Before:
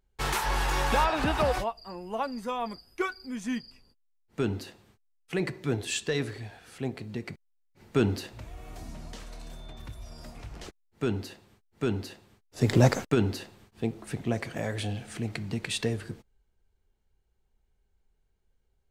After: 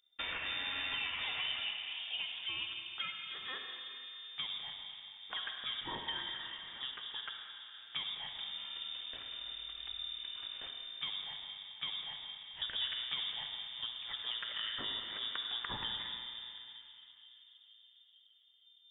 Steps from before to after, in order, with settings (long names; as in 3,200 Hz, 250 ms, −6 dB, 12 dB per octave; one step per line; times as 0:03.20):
graphic EQ with 10 bands 250 Hz −10 dB, 500 Hz +5 dB, 2,000 Hz +5 dB
downward compressor 6 to 1, threshold −31 dBFS, peak gain reduction 15.5 dB
tape delay 462 ms, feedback 87%, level −15 dB, low-pass 1,000 Hz
comb and all-pass reverb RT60 3.6 s, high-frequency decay 0.55×, pre-delay 25 ms, DRR 2 dB
voice inversion scrambler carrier 3,600 Hz
level −6.5 dB